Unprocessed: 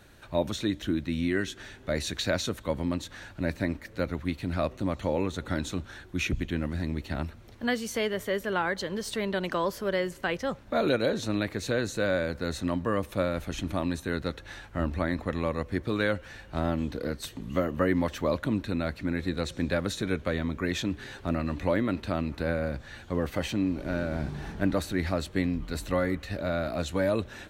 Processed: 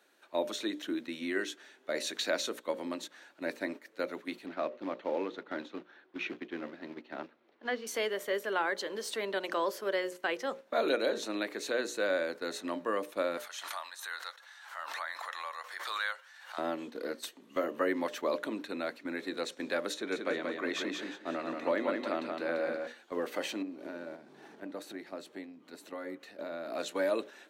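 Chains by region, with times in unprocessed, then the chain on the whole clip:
0:04.46–0:07.87: high-pass filter 63 Hz 24 dB per octave + floating-point word with a short mantissa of 2 bits + high-frequency loss of the air 280 metres
0:13.37–0:16.58: high-pass filter 920 Hz 24 dB per octave + parametric band 2,500 Hz −7 dB 0.36 octaves + background raised ahead of every attack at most 36 dB per second
0:19.94–0:22.87: high-shelf EQ 8,700 Hz −11.5 dB + repeating echo 181 ms, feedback 38%, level −4 dB + one half of a high-frequency compander decoder only
0:23.62–0:26.75: low-shelf EQ 440 Hz +8 dB + downward compressor, threshold −29 dBFS
whole clip: high-pass filter 300 Hz 24 dB per octave; mains-hum notches 60/120/180/240/300/360/420/480/540/600 Hz; noise gate −40 dBFS, range −7 dB; level −2.5 dB

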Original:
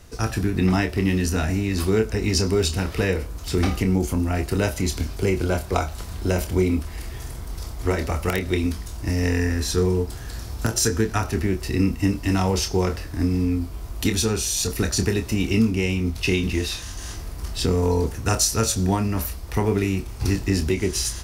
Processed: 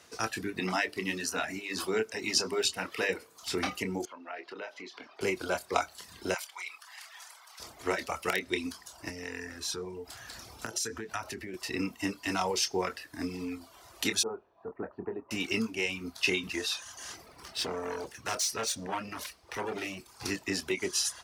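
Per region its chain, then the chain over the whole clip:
0:00.60–0:03.43: high-pass filter 110 Hz + mains-hum notches 50/100/150/200/250/300/350/400/450 Hz
0:04.05–0:05.21: high-pass filter 370 Hz + downward compressor 3 to 1, threshold −31 dBFS + high-frequency loss of the air 250 metres
0:06.34–0:07.60: high-pass filter 830 Hz 24 dB per octave + high-shelf EQ 8,500 Hz −4 dB
0:09.09–0:11.54: downward compressor 5 to 1, threshold −25 dBFS + low-shelf EQ 110 Hz +7.5 dB
0:14.23–0:15.31: low-pass filter 1,000 Hz 24 dB per octave + spectral tilt +2 dB per octave
0:17.26–0:20.00: running median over 3 samples + hard clipping −22.5 dBFS + notch filter 7,200 Hz, Q 14
whole clip: meter weighting curve A; reverb reduction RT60 0.9 s; level −3 dB

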